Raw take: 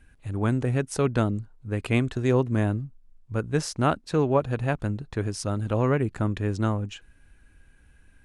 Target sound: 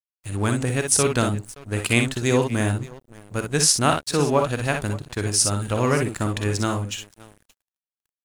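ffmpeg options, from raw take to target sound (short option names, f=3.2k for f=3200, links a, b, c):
-af "aecho=1:1:48|60|573:0.299|0.501|0.126,crystalizer=i=6:c=0,aeval=exprs='sgn(val(0))*max(abs(val(0))-0.00841,0)':c=same,volume=1dB"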